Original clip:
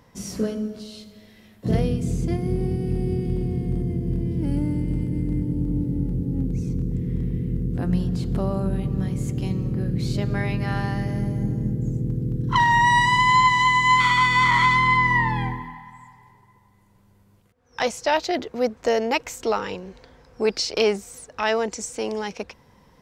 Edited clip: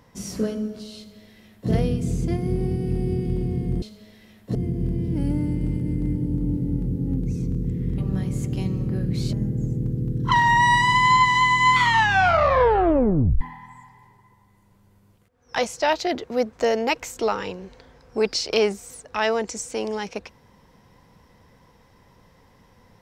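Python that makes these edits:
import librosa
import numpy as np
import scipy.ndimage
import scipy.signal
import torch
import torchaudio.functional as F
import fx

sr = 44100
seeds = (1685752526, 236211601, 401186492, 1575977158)

y = fx.edit(x, sr, fx.duplicate(start_s=0.97, length_s=0.73, to_s=3.82),
    fx.cut(start_s=7.25, length_s=1.58),
    fx.cut(start_s=10.18, length_s=1.39),
    fx.tape_stop(start_s=14.04, length_s=1.61), tone=tone)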